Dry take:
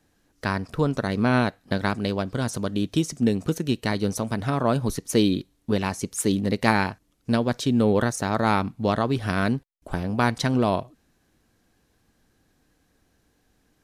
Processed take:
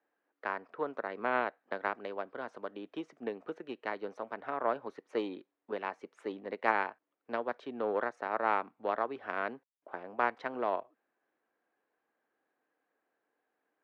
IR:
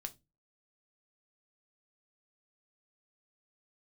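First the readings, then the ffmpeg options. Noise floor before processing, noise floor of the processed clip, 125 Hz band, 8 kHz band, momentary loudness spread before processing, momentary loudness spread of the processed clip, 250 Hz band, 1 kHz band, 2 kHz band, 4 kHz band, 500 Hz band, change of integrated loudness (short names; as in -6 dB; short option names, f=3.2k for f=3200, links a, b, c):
-67 dBFS, under -85 dBFS, -33.5 dB, under -35 dB, 7 LU, 10 LU, -20.5 dB, -6.5 dB, -8.0 dB, -20.5 dB, -9.5 dB, -11.5 dB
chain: -filter_complex "[0:a]highpass=200,lowpass=3.7k,aeval=exprs='0.841*(cos(1*acos(clip(val(0)/0.841,-1,1)))-cos(1*PI/2))+0.0422*(cos(7*acos(clip(val(0)/0.841,-1,1)))-cos(7*PI/2))':c=same,acrossover=split=370 2300:gain=0.0708 1 0.1[a][b][c];[a][b][c]amix=inputs=3:normalize=0,volume=-4.5dB"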